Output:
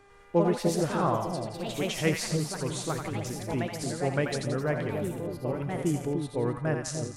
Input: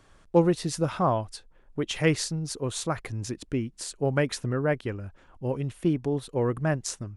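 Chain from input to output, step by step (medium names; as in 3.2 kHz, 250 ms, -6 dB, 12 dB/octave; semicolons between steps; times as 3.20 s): mains buzz 400 Hz, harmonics 6, -55 dBFS -4 dB/octave; two-band feedback delay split 690 Hz, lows 298 ms, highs 86 ms, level -5 dB; ever faster or slower copies 99 ms, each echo +3 st, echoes 2, each echo -6 dB; trim -4 dB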